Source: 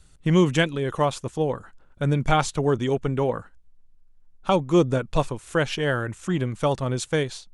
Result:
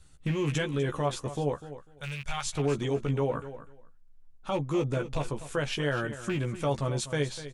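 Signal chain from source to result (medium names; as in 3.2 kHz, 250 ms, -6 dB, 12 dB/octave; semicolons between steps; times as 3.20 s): rattle on loud lows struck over -24 dBFS, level -23 dBFS; 1.55–2.47 s: amplifier tone stack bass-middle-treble 10-0-10; peak limiter -18 dBFS, peak gain reduction 10.5 dB; doubling 14 ms -5 dB; feedback delay 248 ms, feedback 17%, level -13.5 dB; trim -4 dB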